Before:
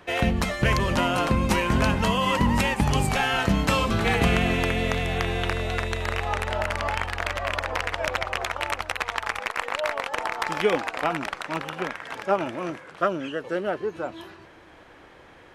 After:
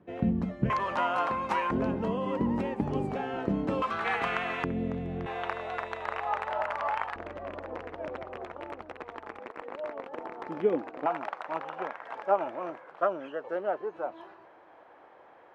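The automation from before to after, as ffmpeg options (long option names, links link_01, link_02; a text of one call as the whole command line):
ffmpeg -i in.wav -af "asetnsamples=nb_out_samples=441:pad=0,asendcmd='0.7 bandpass f 1000;1.71 bandpass f 350;3.82 bandpass f 1200;4.64 bandpass f 230;5.26 bandpass f 920;7.16 bandpass f 310;11.06 bandpass f 760',bandpass=frequency=210:width_type=q:width=1.5:csg=0" out.wav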